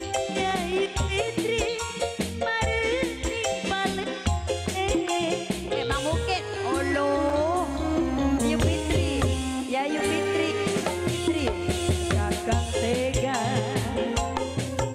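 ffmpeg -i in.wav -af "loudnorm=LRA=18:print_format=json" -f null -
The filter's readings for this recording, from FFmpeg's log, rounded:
"input_i" : "-26.2",
"input_tp" : "-11.2",
"input_lra" : "1.7",
"input_thresh" : "-36.2",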